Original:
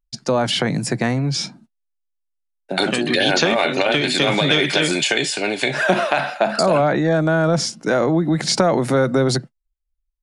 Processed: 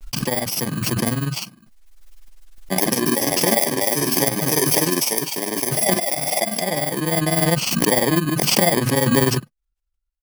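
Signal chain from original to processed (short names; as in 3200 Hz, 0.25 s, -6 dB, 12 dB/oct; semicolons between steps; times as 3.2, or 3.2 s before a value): FFT order left unsorted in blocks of 32 samples; random-step tremolo 3.5 Hz; grains 63 ms, spray 13 ms, pitch spread up and down by 0 st; backwards sustainer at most 27 dB/s; gain +3.5 dB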